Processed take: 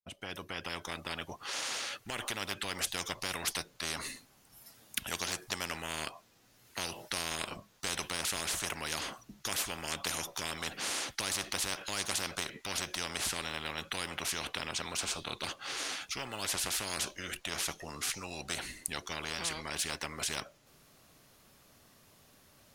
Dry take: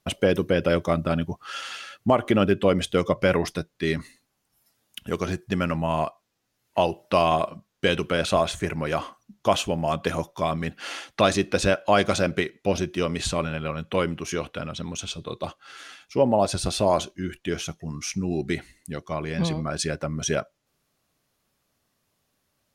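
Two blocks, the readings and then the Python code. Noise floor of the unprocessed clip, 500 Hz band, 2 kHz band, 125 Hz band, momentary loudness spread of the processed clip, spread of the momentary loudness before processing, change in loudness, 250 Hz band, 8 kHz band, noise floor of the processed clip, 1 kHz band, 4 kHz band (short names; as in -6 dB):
-75 dBFS, -21.0 dB, -6.0 dB, -19.0 dB, 6 LU, 12 LU, -10.5 dB, -19.5 dB, +0.5 dB, -64 dBFS, -13.5 dB, -3.0 dB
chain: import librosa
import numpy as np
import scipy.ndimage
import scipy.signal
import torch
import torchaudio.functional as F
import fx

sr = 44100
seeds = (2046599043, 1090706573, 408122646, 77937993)

y = fx.fade_in_head(x, sr, length_s=2.78)
y = fx.spectral_comp(y, sr, ratio=10.0)
y = y * 10.0 ** (-6.0 / 20.0)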